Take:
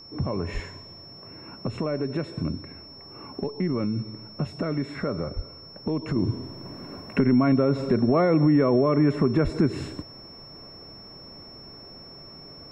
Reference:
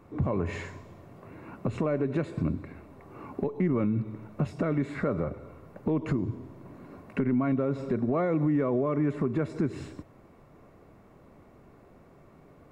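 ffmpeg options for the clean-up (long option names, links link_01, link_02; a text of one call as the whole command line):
ffmpeg -i in.wav -filter_complex "[0:a]bandreject=frequency=5400:width=30,asplit=3[link_01][link_02][link_03];[link_01]afade=type=out:start_time=0.53:duration=0.02[link_04];[link_02]highpass=frequency=140:width=0.5412,highpass=frequency=140:width=1.3066,afade=type=in:start_time=0.53:duration=0.02,afade=type=out:start_time=0.65:duration=0.02[link_05];[link_03]afade=type=in:start_time=0.65:duration=0.02[link_06];[link_04][link_05][link_06]amix=inputs=3:normalize=0,asplit=3[link_07][link_08][link_09];[link_07]afade=type=out:start_time=5.35:duration=0.02[link_10];[link_08]highpass=frequency=140:width=0.5412,highpass=frequency=140:width=1.3066,afade=type=in:start_time=5.35:duration=0.02,afade=type=out:start_time=5.47:duration=0.02[link_11];[link_09]afade=type=in:start_time=5.47:duration=0.02[link_12];[link_10][link_11][link_12]amix=inputs=3:normalize=0,asplit=3[link_13][link_14][link_15];[link_13]afade=type=out:start_time=9.43:duration=0.02[link_16];[link_14]highpass=frequency=140:width=0.5412,highpass=frequency=140:width=1.3066,afade=type=in:start_time=9.43:duration=0.02,afade=type=out:start_time=9.55:duration=0.02[link_17];[link_15]afade=type=in:start_time=9.55:duration=0.02[link_18];[link_16][link_17][link_18]amix=inputs=3:normalize=0,asetnsamples=nb_out_samples=441:pad=0,asendcmd='6.16 volume volume -6.5dB',volume=0dB" out.wav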